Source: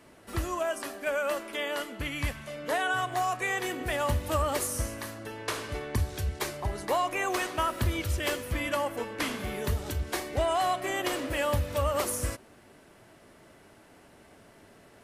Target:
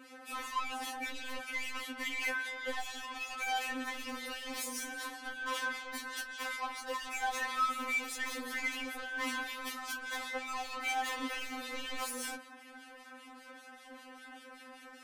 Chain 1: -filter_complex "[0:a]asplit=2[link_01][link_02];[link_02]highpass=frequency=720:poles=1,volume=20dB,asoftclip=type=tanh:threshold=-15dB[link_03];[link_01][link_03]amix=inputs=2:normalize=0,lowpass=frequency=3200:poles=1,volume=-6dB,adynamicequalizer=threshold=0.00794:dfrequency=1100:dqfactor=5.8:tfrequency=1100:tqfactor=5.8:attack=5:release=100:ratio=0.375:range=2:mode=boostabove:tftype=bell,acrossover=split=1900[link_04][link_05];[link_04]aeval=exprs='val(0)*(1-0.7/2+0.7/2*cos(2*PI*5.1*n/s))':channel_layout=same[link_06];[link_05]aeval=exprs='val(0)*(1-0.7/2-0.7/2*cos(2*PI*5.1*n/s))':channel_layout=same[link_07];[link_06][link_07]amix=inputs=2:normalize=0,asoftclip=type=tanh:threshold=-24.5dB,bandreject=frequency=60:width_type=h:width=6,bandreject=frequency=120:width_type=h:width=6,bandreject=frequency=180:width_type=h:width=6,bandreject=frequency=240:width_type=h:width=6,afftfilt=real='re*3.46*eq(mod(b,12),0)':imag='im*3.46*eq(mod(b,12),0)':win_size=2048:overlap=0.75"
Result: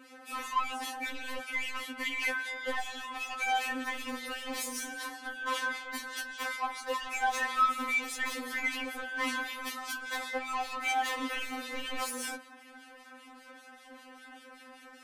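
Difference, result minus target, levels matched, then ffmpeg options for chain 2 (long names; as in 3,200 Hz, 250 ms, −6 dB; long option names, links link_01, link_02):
soft clipping: distortion −6 dB
-filter_complex "[0:a]asplit=2[link_01][link_02];[link_02]highpass=frequency=720:poles=1,volume=20dB,asoftclip=type=tanh:threshold=-15dB[link_03];[link_01][link_03]amix=inputs=2:normalize=0,lowpass=frequency=3200:poles=1,volume=-6dB,adynamicequalizer=threshold=0.00794:dfrequency=1100:dqfactor=5.8:tfrequency=1100:tqfactor=5.8:attack=5:release=100:ratio=0.375:range=2:mode=boostabove:tftype=bell,acrossover=split=1900[link_04][link_05];[link_04]aeval=exprs='val(0)*(1-0.7/2+0.7/2*cos(2*PI*5.1*n/s))':channel_layout=same[link_06];[link_05]aeval=exprs='val(0)*(1-0.7/2-0.7/2*cos(2*PI*5.1*n/s))':channel_layout=same[link_07];[link_06][link_07]amix=inputs=2:normalize=0,asoftclip=type=tanh:threshold=-31.5dB,bandreject=frequency=60:width_type=h:width=6,bandreject=frequency=120:width_type=h:width=6,bandreject=frequency=180:width_type=h:width=6,bandreject=frequency=240:width_type=h:width=6,afftfilt=real='re*3.46*eq(mod(b,12),0)':imag='im*3.46*eq(mod(b,12),0)':win_size=2048:overlap=0.75"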